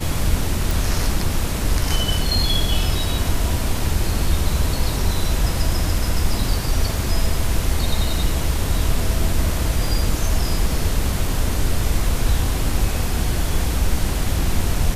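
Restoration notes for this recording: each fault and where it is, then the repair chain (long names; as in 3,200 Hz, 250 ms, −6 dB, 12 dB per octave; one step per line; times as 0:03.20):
0:00.71: click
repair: click removal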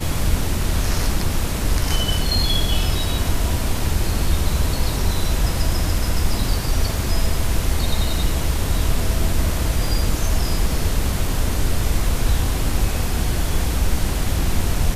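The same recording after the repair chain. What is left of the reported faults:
none of them is left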